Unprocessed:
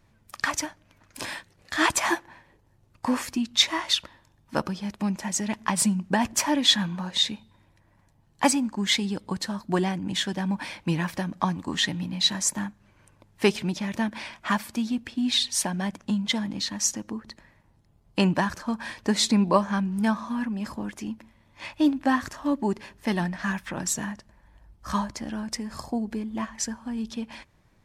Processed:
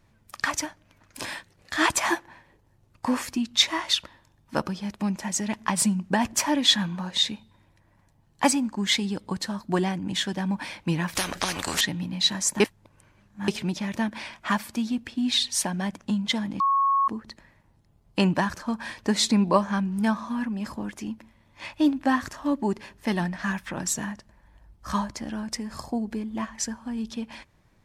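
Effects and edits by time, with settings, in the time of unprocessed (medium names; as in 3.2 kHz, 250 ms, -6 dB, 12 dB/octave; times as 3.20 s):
11.15–11.81 s: spectrum-flattening compressor 4:1
12.60–13.48 s: reverse
16.60–17.08 s: bleep 1.1 kHz -18.5 dBFS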